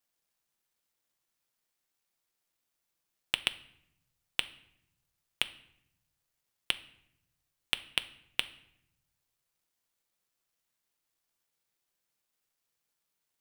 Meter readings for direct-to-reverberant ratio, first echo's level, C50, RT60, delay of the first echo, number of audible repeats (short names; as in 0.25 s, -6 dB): 11.0 dB, none, 17.0 dB, 0.75 s, none, none